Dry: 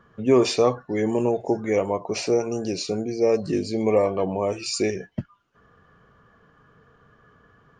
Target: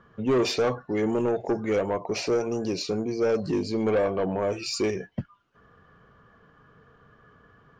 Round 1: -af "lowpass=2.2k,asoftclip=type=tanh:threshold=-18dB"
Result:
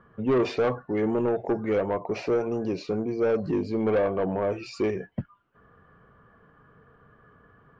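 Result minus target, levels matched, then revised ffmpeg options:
8000 Hz band -14.5 dB
-af "lowpass=5.8k,asoftclip=type=tanh:threshold=-18dB"

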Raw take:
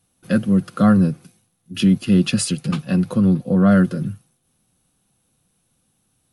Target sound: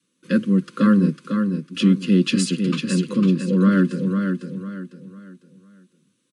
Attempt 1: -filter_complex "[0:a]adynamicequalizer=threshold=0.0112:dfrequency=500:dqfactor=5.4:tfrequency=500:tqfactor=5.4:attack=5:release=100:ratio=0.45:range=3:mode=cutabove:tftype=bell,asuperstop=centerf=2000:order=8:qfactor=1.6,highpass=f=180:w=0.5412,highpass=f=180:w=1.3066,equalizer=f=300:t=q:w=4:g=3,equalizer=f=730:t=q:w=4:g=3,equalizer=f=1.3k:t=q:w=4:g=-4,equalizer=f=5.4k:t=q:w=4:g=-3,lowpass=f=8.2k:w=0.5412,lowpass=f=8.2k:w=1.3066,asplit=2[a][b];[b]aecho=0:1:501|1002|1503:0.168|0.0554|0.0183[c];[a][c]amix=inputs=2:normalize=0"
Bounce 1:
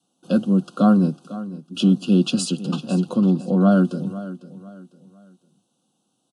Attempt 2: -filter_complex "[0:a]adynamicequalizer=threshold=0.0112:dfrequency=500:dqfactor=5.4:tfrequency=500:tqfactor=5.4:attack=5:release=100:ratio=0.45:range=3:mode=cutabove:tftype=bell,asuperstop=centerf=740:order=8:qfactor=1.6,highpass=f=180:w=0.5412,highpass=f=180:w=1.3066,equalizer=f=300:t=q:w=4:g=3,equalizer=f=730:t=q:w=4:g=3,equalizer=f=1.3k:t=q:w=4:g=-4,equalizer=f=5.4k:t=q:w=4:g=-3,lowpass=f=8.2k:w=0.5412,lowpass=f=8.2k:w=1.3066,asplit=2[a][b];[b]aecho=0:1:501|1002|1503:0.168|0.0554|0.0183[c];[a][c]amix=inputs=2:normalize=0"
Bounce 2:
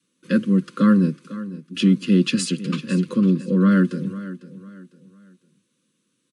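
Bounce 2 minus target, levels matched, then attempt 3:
echo-to-direct -9.5 dB
-filter_complex "[0:a]adynamicequalizer=threshold=0.0112:dfrequency=500:dqfactor=5.4:tfrequency=500:tqfactor=5.4:attack=5:release=100:ratio=0.45:range=3:mode=cutabove:tftype=bell,asuperstop=centerf=740:order=8:qfactor=1.6,highpass=f=180:w=0.5412,highpass=f=180:w=1.3066,equalizer=f=300:t=q:w=4:g=3,equalizer=f=730:t=q:w=4:g=3,equalizer=f=1.3k:t=q:w=4:g=-4,equalizer=f=5.4k:t=q:w=4:g=-3,lowpass=f=8.2k:w=0.5412,lowpass=f=8.2k:w=1.3066,asplit=2[a][b];[b]aecho=0:1:501|1002|1503|2004:0.501|0.165|0.0546|0.018[c];[a][c]amix=inputs=2:normalize=0"

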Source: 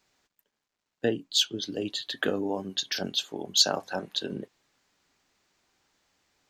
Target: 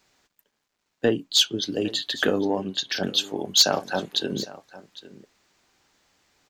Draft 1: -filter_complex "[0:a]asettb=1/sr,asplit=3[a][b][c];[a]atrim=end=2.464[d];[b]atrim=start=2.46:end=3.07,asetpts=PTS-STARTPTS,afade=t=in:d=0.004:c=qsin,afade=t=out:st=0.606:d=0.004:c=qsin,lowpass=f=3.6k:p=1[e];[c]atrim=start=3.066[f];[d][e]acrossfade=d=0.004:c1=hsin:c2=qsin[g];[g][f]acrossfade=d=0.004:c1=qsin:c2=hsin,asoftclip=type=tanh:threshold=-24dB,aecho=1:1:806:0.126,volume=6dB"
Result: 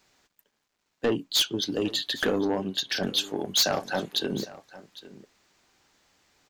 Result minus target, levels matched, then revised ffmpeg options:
soft clip: distortion +11 dB
-filter_complex "[0:a]asettb=1/sr,asplit=3[a][b][c];[a]atrim=end=2.464[d];[b]atrim=start=2.46:end=3.07,asetpts=PTS-STARTPTS,afade=t=in:d=0.004:c=qsin,afade=t=out:st=0.606:d=0.004:c=qsin,lowpass=f=3.6k:p=1[e];[c]atrim=start=3.066[f];[d][e]acrossfade=d=0.004:c1=hsin:c2=qsin[g];[g][f]acrossfade=d=0.004:c1=qsin:c2=hsin,asoftclip=type=tanh:threshold=-13dB,aecho=1:1:806:0.126,volume=6dB"

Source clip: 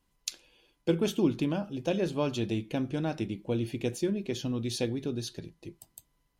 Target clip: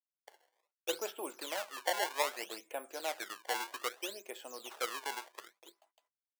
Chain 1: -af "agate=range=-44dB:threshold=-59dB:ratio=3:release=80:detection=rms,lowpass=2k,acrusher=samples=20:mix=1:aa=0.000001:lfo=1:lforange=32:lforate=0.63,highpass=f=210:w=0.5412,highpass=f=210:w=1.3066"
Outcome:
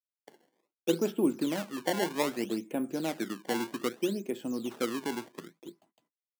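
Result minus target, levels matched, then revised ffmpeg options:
250 Hz band +15.5 dB
-af "agate=range=-44dB:threshold=-59dB:ratio=3:release=80:detection=rms,lowpass=2k,acrusher=samples=20:mix=1:aa=0.000001:lfo=1:lforange=32:lforate=0.63,highpass=f=580:w=0.5412,highpass=f=580:w=1.3066"

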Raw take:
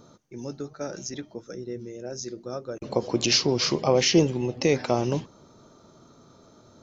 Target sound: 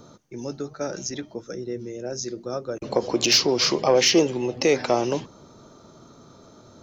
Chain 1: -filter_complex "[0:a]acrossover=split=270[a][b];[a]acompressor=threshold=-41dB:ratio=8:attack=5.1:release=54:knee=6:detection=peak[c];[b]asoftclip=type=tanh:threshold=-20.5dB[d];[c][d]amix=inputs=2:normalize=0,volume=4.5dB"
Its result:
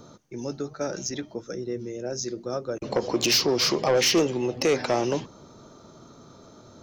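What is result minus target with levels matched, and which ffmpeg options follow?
soft clip: distortion +13 dB
-filter_complex "[0:a]acrossover=split=270[a][b];[a]acompressor=threshold=-41dB:ratio=8:attack=5.1:release=54:knee=6:detection=peak[c];[b]asoftclip=type=tanh:threshold=-11dB[d];[c][d]amix=inputs=2:normalize=0,volume=4.5dB"

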